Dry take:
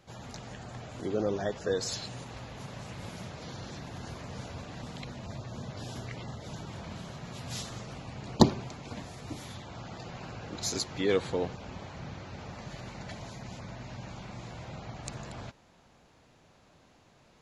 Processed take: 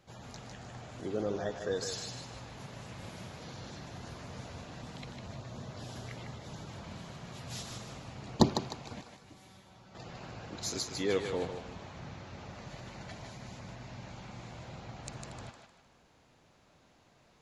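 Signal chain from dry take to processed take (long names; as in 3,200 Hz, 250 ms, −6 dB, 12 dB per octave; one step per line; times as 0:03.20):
0:09.01–0:09.95: tuned comb filter 190 Hz, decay 0.31 s, harmonics all, mix 80%
feedback echo with a high-pass in the loop 153 ms, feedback 39%, high-pass 510 Hz, level −5 dB
level −4 dB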